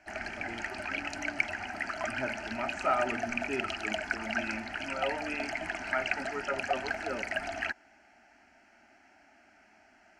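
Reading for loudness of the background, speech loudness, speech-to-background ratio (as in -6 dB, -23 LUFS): -35.0 LUFS, -37.5 LUFS, -2.5 dB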